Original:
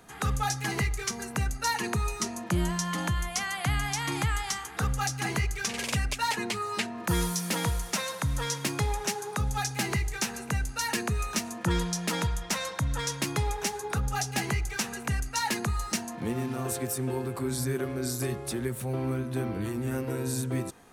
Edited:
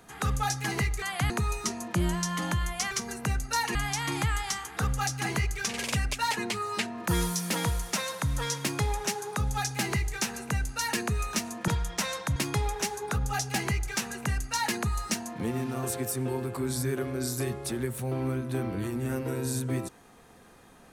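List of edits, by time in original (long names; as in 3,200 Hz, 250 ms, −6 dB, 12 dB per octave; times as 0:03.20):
0:01.02–0:01.86: swap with 0:03.47–0:03.75
0:11.68–0:12.20: remove
0:12.88–0:13.18: remove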